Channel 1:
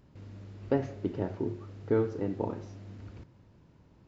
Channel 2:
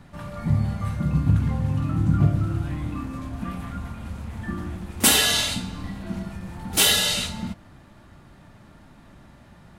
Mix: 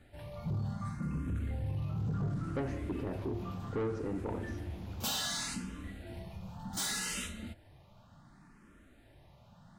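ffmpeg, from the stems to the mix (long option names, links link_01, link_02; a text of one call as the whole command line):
ffmpeg -i stem1.wav -i stem2.wav -filter_complex "[0:a]adelay=1850,volume=0.5dB[link_01];[1:a]asplit=2[link_02][link_03];[link_03]afreqshift=0.67[link_04];[link_02][link_04]amix=inputs=2:normalize=1,volume=-7dB[link_05];[link_01][link_05]amix=inputs=2:normalize=0,asoftclip=type=tanh:threshold=-26dB,alimiter=level_in=5.5dB:limit=-24dB:level=0:latency=1:release=29,volume=-5.5dB" out.wav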